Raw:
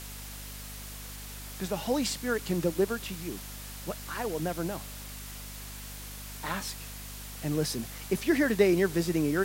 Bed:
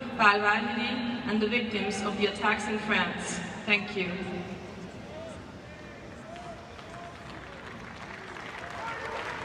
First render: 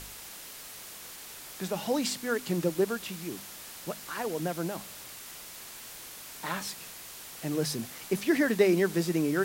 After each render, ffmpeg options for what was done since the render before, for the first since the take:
-af "bandreject=f=50:t=h:w=4,bandreject=f=100:t=h:w=4,bandreject=f=150:t=h:w=4,bandreject=f=200:t=h:w=4,bandreject=f=250:t=h:w=4"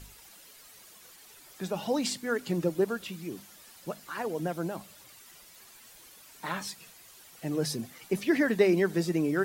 -af "afftdn=nr=11:nf=-45"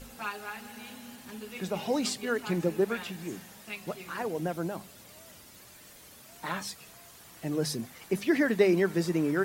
-filter_complex "[1:a]volume=-15.5dB[a];[0:a][a]amix=inputs=2:normalize=0"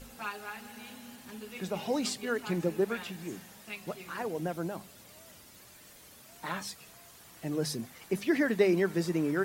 -af "volume=-2dB"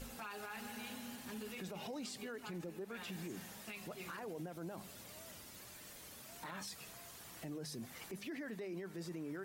-af "acompressor=threshold=-38dB:ratio=8,alimiter=level_in=13.5dB:limit=-24dB:level=0:latency=1:release=16,volume=-13.5dB"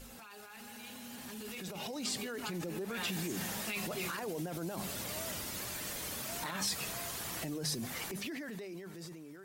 -filter_complex "[0:a]acrossover=split=3200[a][b];[a]alimiter=level_in=21.5dB:limit=-24dB:level=0:latency=1:release=12,volume=-21.5dB[c];[c][b]amix=inputs=2:normalize=0,dynaudnorm=f=510:g=7:m=13.5dB"

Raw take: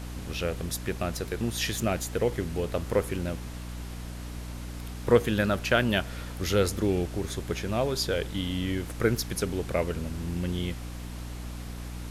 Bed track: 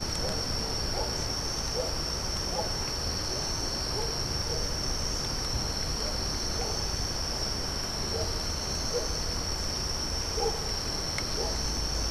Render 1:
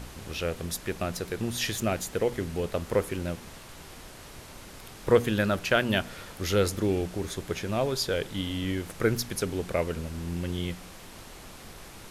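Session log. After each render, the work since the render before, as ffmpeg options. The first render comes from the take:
-af "bandreject=f=60:t=h:w=4,bandreject=f=120:t=h:w=4,bandreject=f=180:t=h:w=4,bandreject=f=240:t=h:w=4,bandreject=f=300:t=h:w=4"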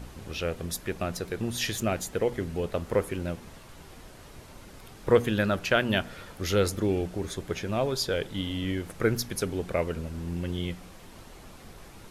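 -af "afftdn=nr=6:nf=-47"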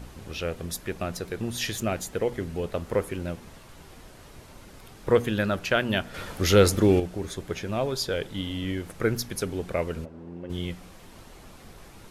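-filter_complex "[0:a]asettb=1/sr,asplit=3[a][b][c];[a]atrim=end=6.144[d];[b]atrim=start=6.14:end=7,asetpts=PTS-STARTPTS,afade=t=in:d=0.004:c=qsin,afade=t=out:st=0.856:d=0.004:c=qsin,acontrast=85[e];[c]atrim=start=6.996[f];[d][e]acrossfade=d=0.004:c1=hsin:c2=qsin[g];[g][f]acrossfade=d=0.004:c1=qsin:c2=hsin,asplit=3[h][i][j];[h]afade=t=out:st=10.04:d=0.02[k];[i]bandpass=f=510:t=q:w=0.92,afade=t=in:st=10.04:d=0.02,afade=t=out:st=10.49:d=0.02[l];[j]afade=t=in:st=10.49:d=0.02[m];[k][l][m]amix=inputs=3:normalize=0"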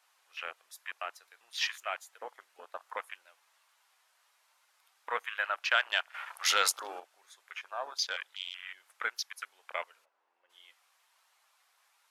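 -af "highpass=f=870:w=0.5412,highpass=f=870:w=1.3066,afwtdn=0.0126"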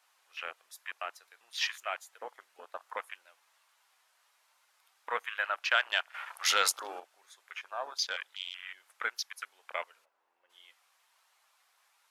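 -af "lowshelf=f=170:g=4.5"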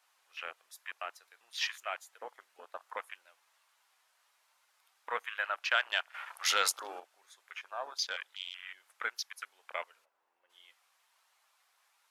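-af "volume=-2dB"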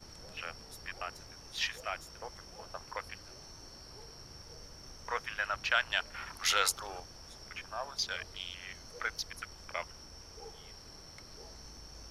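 -filter_complex "[1:a]volume=-20dB[a];[0:a][a]amix=inputs=2:normalize=0"

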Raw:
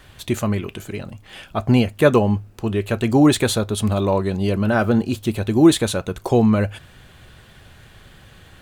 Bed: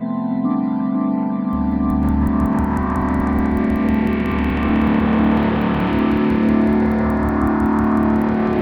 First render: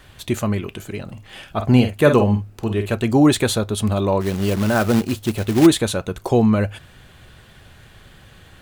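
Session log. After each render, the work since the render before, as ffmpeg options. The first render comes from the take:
-filter_complex "[0:a]asettb=1/sr,asplit=3[a][b][c];[a]atrim=end=1.044[d];[b]atrim=start=1.04:end=2.95,asetpts=PTS-STARTPTS,afade=t=in:d=0.004:c=qsin,afade=t=out:st=1.906:d=0.004:c=qsin,asplit=2[e][f];[f]adelay=48,volume=-8dB[g];[e][g]amix=inputs=2:normalize=0,atrim=end_sample=84231[h];[c]atrim=start=2.946[i];[d][h]acrossfade=d=0.004:c1=hsin:c2=qsin[j];[j][i]acrossfade=d=0.004:c1=qsin:c2=hsin,asplit=3[k][l][m];[k]afade=t=out:st=4.2:d=0.02[n];[l]acrusher=bits=3:mode=log:mix=0:aa=0.000001,afade=t=in:st=4.2:d=0.02,afade=t=out:st=5.65:d=0.02[o];[m]afade=t=in:st=5.65:d=0.02[p];[n][o][p]amix=inputs=3:normalize=0"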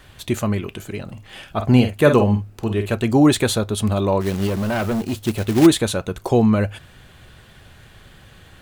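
-filter_complex "[0:a]asettb=1/sr,asplit=3[a][b][c];[a]atrim=end=4.474[d];[b]atrim=start=4.47:end=5.15,asetpts=PTS-STARTPTS,afade=t=in:d=0.004:c=qsin,afade=t=out:st=0.676:d=0.004:c=qsin,asoftclip=type=hard:threshold=-18.5dB[e];[c]atrim=start=5.146[f];[d][e]acrossfade=d=0.004:c1=hsin:c2=qsin[g];[g][f]acrossfade=d=0.004:c1=qsin:c2=hsin"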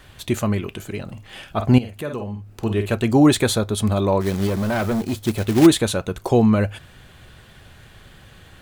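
-filter_complex "[0:a]asettb=1/sr,asplit=3[a][b][c];[a]atrim=end=1.784[d];[b]atrim=start=1.78:end=2.55,asetpts=PTS-STARTPTS,afade=t=in:d=0.004:c=qsin,afade=t=out:st=0.766:d=0.004:c=qsin,acompressor=threshold=-37dB:ratio=2:attack=3.2:release=140:knee=1:detection=peak[e];[c]atrim=start=2.546[f];[d][e]acrossfade=d=0.004:c1=hsin:c2=qsin[g];[g][f]acrossfade=d=0.004:c1=qsin:c2=hsin,asettb=1/sr,asplit=3[h][i][j];[h]atrim=end=3.374[k];[i]atrim=start=3.37:end=5.4,asetpts=PTS-STARTPTS,afade=t=in:d=0.004:c=qsin,afade=t=out:st=2.026:d=0.004:c=qsin,bandreject=f=2.8k:w=12[l];[j]atrim=start=5.396[m];[k][l]acrossfade=d=0.004:c1=hsin:c2=qsin[n];[n][m]acrossfade=d=0.004:c1=qsin:c2=hsin"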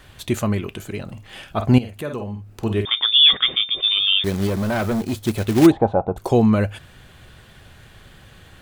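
-filter_complex "[0:a]asettb=1/sr,asplit=3[a][b][c];[a]atrim=end=2.854[d];[b]atrim=start=2.85:end=4.24,asetpts=PTS-STARTPTS,afade=t=in:d=0.004:c=qsin,afade=t=out:st=1.386:d=0.004:c=qsin,lowpass=f=3.1k:t=q:w=0.5098,lowpass=f=3.1k:t=q:w=0.6013,lowpass=f=3.1k:t=q:w=0.9,lowpass=f=3.1k:t=q:w=2.563,afreqshift=-3700[e];[c]atrim=start=4.236[f];[d][e]acrossfade=d=0.004:c1=hsin:c2=qsin[g];[g][f]acrossfade=d=0.004:c1=qsin:c2=hsin,asplit=3[h][i][j];[h]afade=t=out:st=5.7:d=0.02[k];[i]lowpass=f=790:t=q:w=9,afade=t=in:st=5.7:d=0.02,afade=t=out:st=6.16:d=0.02[l];[j]afade=t=in:st=6.16:d=0.02[m];[k][l][m]amix=inputs=3:normalize=0"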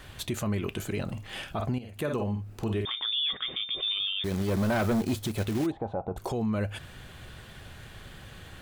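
-af "acompressor=threshold=-23dB:ratio=16,alimiter=limit=-22dB:level=0:latency=1:release=18"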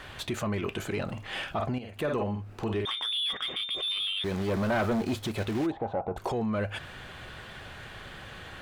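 -filter_complex "[0:a]asplit=2[a][b];[b]asoftclip=type=tanh:threshold=-32.5dB,volume=-6dB[c];[a][c]amix=inputs=2:normalize=0,asplit=2[d][e];[e]highpass=f=720:p=1,volume=9dB,asoftclip=type=tanh:threshold=-20.5dB[f];[d][f]amix=inputs=2:normalize=0,lowpass=f=2.2k:p=1,volume=-6dB"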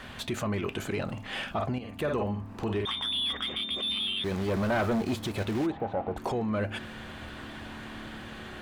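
-filter_complex "[1:a]volume=-29dB[a];[0:a][a]amix=inputs=2:normalize=0"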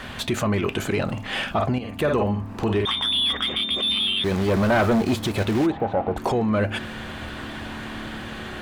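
-af "volume=8dB"

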